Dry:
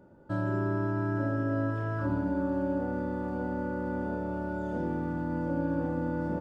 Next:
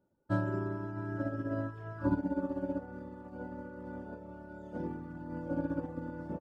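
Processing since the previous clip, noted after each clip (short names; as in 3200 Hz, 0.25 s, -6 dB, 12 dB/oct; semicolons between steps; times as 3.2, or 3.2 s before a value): reverb removal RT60 1.1 s; upward expander 2.5:1, over -44 dBFS; gain +4 dB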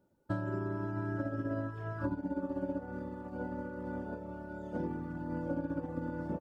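compressor 12:1, threshold -35 dBFS, peak gain reduction 11.5 dB; gain +4 dB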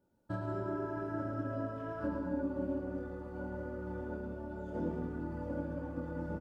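chorus voices 6, 0.89 Hz, delay 25 ms, depth 2.6 ms; loudspeakers at several distances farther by 38 m -5 dB, 63 m -11 dB; non-linear reverb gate 0.27 s rising, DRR 7.5 dB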